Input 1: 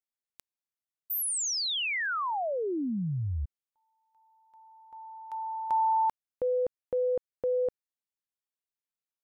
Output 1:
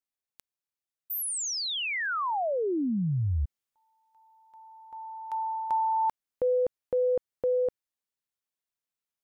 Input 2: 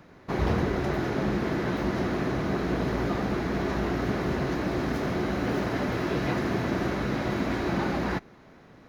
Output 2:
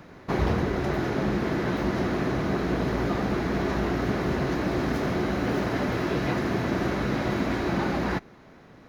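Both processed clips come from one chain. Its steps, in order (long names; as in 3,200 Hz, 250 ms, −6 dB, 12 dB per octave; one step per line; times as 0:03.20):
speech leveller 0.5 s
level +1.5 dB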